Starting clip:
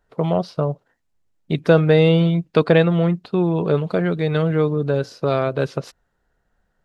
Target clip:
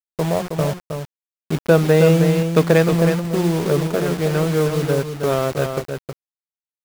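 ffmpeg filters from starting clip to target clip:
-filter_complex "[0:a]asettb=1/sr,asplit=3[a][b][c];[a]atrim=end=0.604[d];[b]atrim=start=0.6:end=2.93,asetpts=PTS-STARTPTS,afade=t=in:d=0.004:c=qsin,afade=t=out:st=2.326:d=0.004:c=qsin,highpass=f=60:w=0.5412,highpass=f=60:w=1.3066[e];[c]atrim=start=2.926[f];[d][e]acrossfade=d=0.004:c1=hsin:c2=qsin[g];[g][f]acrossfade=d=0.004:c1=qsin:c2=hsin,bandreject=f=60:t=h:w=6,bandreject=f=120:t=h:w=6,bandreject=f=180:t=h:w=6,bandreject=f=240:t=h:w=6,bandreject=f=300:t=h:w=6,bandreject=f=360:t=h:w=6,adynamicsmooth=sensitivity=1.5:basefreq=520,acrusher=bits=4:mix=0:aa=0.000001,aecho=1:1:317:0.473"

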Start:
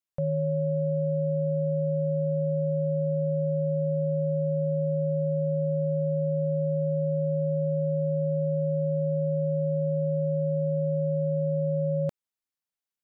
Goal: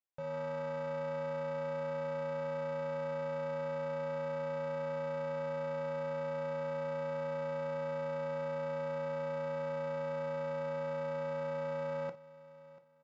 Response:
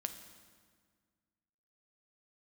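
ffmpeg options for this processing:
-filter_complex "[0:a]equalizer=f=520:t=o:w=1.6:g=-3.5,asplit=2[a][b];[b]acrusher=samples=21:mix=1:aa=0.000001,volume=-9dB[c];[a][c]amix=inputs=2:normalize=0,dynaudnorm=f=100:g=9:m=11.5dB,alimiter=limit=-15dB:level=0:latency=1,aresample=16000,asoftclip=type=tanh:threshold=-24.5dB,aresample=44100,bass=f=250:g=-13,treble=f=4k:g=-13,aecho=1:1:689|1378:0.112|0.0325[d];[1:a]atrim=start_sample=2205,atrim=end_sample=4410,asetrate=70560,aresample=44100[e];[d][e]afir=irnorm=-1:irlink=0"

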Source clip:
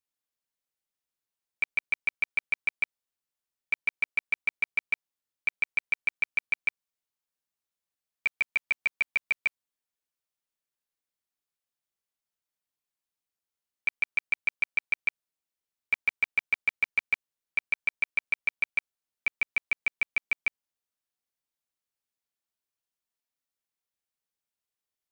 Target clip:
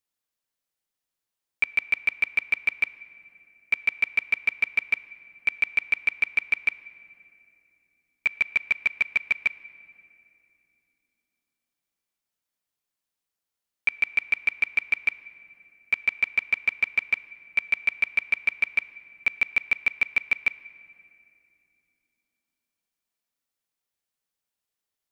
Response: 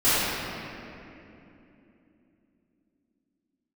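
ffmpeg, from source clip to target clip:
-filter_complex "[0:a]asplit=2[a][b];[1:a]atrim=start_sample=2205[c];[b][c]afir=irnorm=-1:irlink=0,volume=-36.5dB[d];[a][d]amix=inputs=2:normalize=0,volume=3.5dB"

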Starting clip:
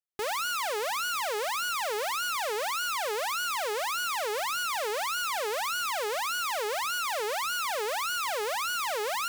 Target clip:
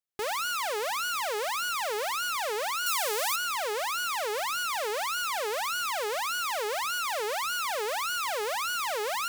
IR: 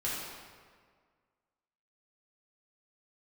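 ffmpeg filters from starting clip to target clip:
-filter_complex "[0:a]asettb=1/sr,asplit=3[a][b][c];[a]atrim=end=2.864[d];[b]atrim=start=2.86:end=3.36,asetpts=PTS-STARTPTS,afade=t=in:d=0.004:c=qsin,afade=t=out:st=0.496:d=0.004:c=qsin,highshelf=f=4.8k:g=9.5[e];[c]atrim=start=3.356[f];[d][e]acrossfade=d=0.004:c1=hsin:c2=qsin[g];[g][f]acrossfade=d=0.004:c1=qsin:c2=hsin"

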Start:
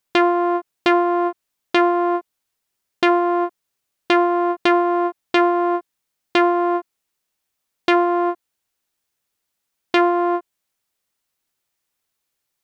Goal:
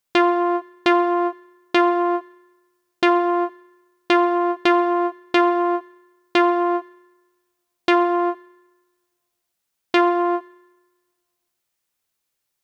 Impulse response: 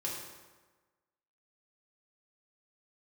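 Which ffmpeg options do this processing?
-filter_complex "[0:a]asplit=2[a][b];[1:a]atrim=start_sample=2205,highshelf=f=4.5k:g=7.5[c];[b][c]afir=irnorm=-1:irlink=0,volume=-14.5dB[d];[a][d]amix=inputs=2:normalize=0,volume=-2.5dB"

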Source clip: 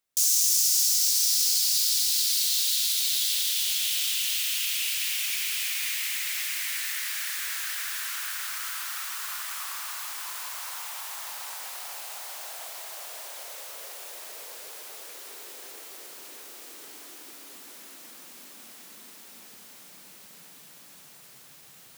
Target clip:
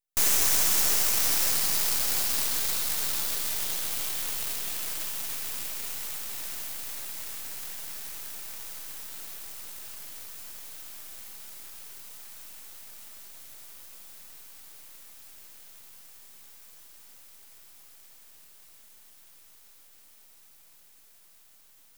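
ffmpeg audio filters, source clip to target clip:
-af "aderivative,aeval=exprs='max(val(0),0)':c=same,aeval=exprs='0.422*(cos(1*acos(clip(val(0)/0.422,-1,1)))-cos(1*PI/2))+0.0335*(cos(7*acos(clip(val(0)/0.422,-1,1)))-cos(7*PI/2))':c=same,volume=1.5dB"

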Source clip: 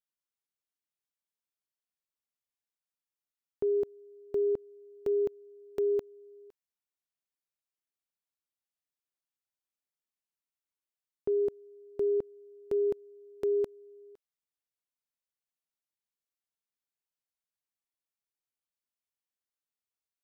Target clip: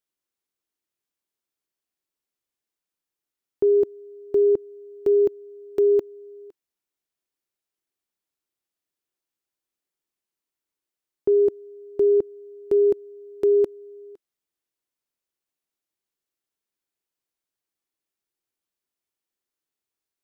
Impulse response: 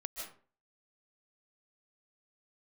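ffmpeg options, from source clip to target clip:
-af "equalizer=f=350:t=o:w=0.63:g=8.5,volume=4.5dB"

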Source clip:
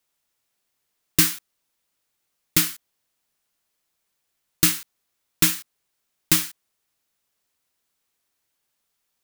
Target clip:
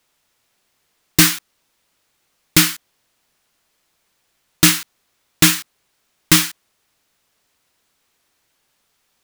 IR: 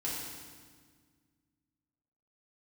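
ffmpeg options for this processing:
-af "highshelf=f=7.8k:g=-8,aeval=exprs='0.596*(cos(1*acos(clip(val(0)/0.596,-1,1)))-cos(1*PI/2))+0.266*(cos(5*acos(clip(val(0)/0.596,-1,1)))-cos(5*PI/2))':c=same,volume=2.5dB"

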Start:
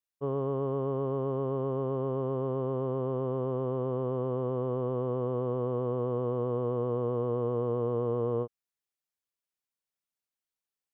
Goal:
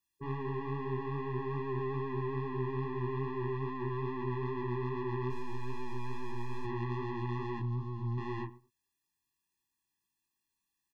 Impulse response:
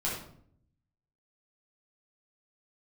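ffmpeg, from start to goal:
-filter_complex "[0:a]asoftclip=type=tanh:threshold=-35.5dB,acontrast=70,asettb=1/sr,asplit=3[a][b][c];[a]atrim=end=5.304[d];[b]atrim=start=5.3:end=6.65,asetpts=PTS-STARTPTS,afade=t=in:d=0.004:c=qsin,afade=t=out:st=1.346:d=0.004:c=qsin,aeval=exprs='max(val(0),0)':c=same[e];[c]atrim=start=6.646[f];[d][e]acrossfade=d=0.004:c1=hsin:c2=qsin[g];[g][f]acrossfade=d=0.004:c1=qsin:c2=hsin,asettb=1/sr,asplit=3[h][i][j];[h]atrim=end=7.594[k];[i]atrim=start=7.59:end=8.18,asetpts=PTS-STARTPTS,afade=t=in:d=0.004:c=qsin,afade=t=out:st=0.586:d=0.004:c=qsin,equalizer=f=125:t=o:w=1:g=11,equalizer=f=250:t=o:w=1:g=6,equalizer=f=500:t=o:w=1:g=-9,equalizer=f=1k:t=o:w=1:g=5,equalizer=f=2k:t=o:w=1:g=-11[l];[j]atrim=start=8.176[m];[k][l]acrossfade=d=0.004:c1=hsin:c2=qsin[n];[n][m]acrossfade=d=0.004:c1=qsin:c2=hsin,asplit=2[o][p];[p]adelay=106,lowpass=f=1.3k:p=1,volume=-21.5dB,asplit=2[q][r];[r]adelay=106,lowpass=f=1.3k:p=1,volume=0.19[s];[q][s]amix=inputs=2:normalize=0[t];[o][t]amix=inputs=2:normalize=0,alimiter=level_in=9.5dB:limit=-24dB:level=0:latency=1:release=32,volume=-9.5dB,flanger=delay=19:depth=6.7:speed=2.4,afftfilt=real='re*eq(mod(floor(b*sr/1024/400),2),0)':imag='im*eq(mod(floor(b*sr/1024/400),2),0)':win_size=1024:overlap=0.75,volume=6dB"

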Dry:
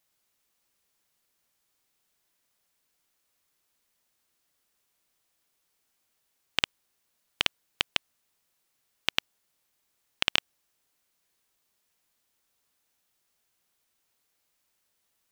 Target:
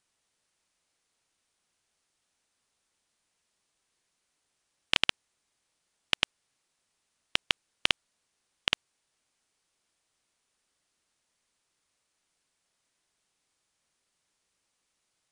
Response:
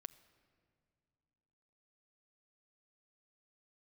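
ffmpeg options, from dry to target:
-af "areverse,aresample=22050,aresample=44100"

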